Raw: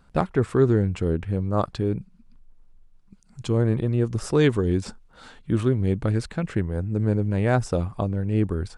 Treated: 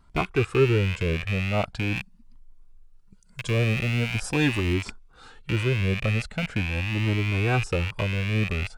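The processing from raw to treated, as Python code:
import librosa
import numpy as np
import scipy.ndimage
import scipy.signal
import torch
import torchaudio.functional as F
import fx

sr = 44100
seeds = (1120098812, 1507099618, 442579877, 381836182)

y = fx.rattle_buzz(x, sr, strikes_db=-35.0, level_db=-16.0)
y = fx.high_shelf(y, sr, hz=6700.0, db=6.0, at=(1.96, 4.74))
y = fx.comb_cascade(y, sr, direction='rising', hz=0.42)
y = F.gain(torch.from_numpy(y), 2.0).numpy()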